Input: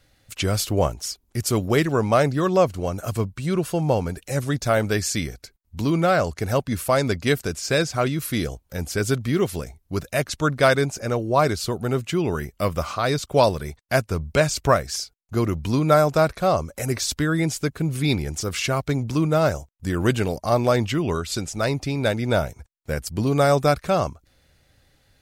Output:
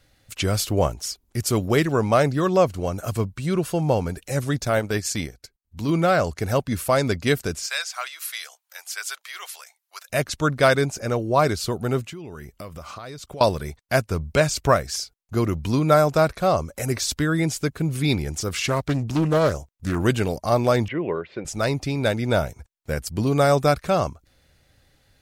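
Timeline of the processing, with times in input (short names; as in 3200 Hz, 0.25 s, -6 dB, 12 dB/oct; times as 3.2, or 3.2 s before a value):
4.65–5.89 transient shaper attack -6 dB, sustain -10 dB
7.66–10.1 Bessel high-pass 1300 Hz, order 6
12.02–13.41 compressor, threshold -34 dBFS
18.57–20 Doppler distortion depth 0.36 ms
20.88–21.45 speaker cabinet 220–2200 Hz, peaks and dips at 250 Hz -7 dB, 510 Hz +6 dB, 760 Hz -3 dB, 1300 Hz -9 dB, 2000 Hz +3 dB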